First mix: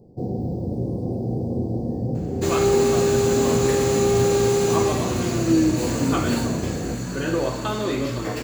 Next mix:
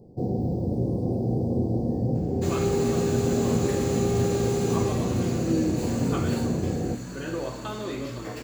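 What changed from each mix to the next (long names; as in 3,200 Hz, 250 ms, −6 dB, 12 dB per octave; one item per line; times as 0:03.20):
second sound −8.0 dB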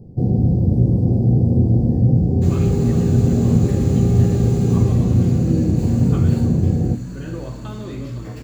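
speech +4.5 dB
second sound −3.5 dB
master: add bass and treble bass +14 dB, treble 0 dB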